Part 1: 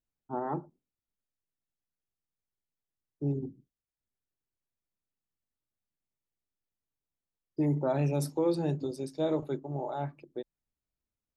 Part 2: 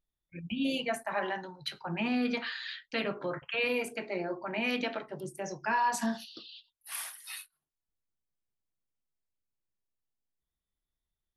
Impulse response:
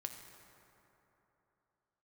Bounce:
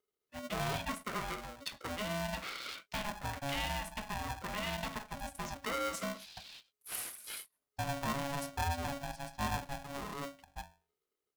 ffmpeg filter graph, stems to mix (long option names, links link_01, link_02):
-filter_complex "[0:a]bandreject=frequency=50:width_type=h:width=6,bandreject=frequency=100:width_type=h:width=6,bandreject=frequency=150:width_type=h:width=6,bandreject=frequency=200:width_type=h:width=6,bandreject=frequency=250:width_type=h:width=6,bandreject=frequency=300:width_type=h:width=6,bandreject=frequency=350:width_type=h:width=6,bandreject=frequency=400:width_type=h:width=6,bandreject=frequency=450:width_type=h:width=6,bandreject=frequency=500:width_type=h:width=6,adynamicequalizer=threshold=0.00447:dfrequency=960:dqfactor=1.3:tfrequency=960:tqfactor=1.3:attack=5:release=100:ratio=0.375:range=2:mode=cutabove:tftype=bell,adelay=200,volume=-5.5dB[link_01];[1:a]equalizer=frequency=360:width=0.35:gain=3.5,acompressor=threshold=-35dB:ratio=2,highshelf=frequency=7800:gain=5,volume=-3.5dB[link_02];[link_01][link_02]amix=inputs=2:normalize=0,acrossover=split=260[link_03][link_04];[link_03]acompressor=threshold=-40dB:ratio=6[link_05];[link_05][link_04]amix=inputs=2:normalize=0,aeval=exprs='val(0)*sgn(sin(2*PI*420*n/s))':channel_layout=same"